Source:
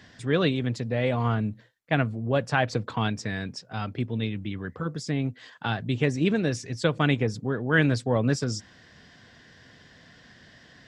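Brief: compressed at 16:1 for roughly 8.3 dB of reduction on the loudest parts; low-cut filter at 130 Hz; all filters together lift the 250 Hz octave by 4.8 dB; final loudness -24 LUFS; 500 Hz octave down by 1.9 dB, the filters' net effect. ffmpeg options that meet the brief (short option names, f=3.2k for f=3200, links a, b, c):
-af "highpass=130,equalizer=f=250:t=o:g=7.5,equalizer=f=500:t=o:g=-4.5,acompressor=threshold=-24dB:ratio=16,volume=6.5dB"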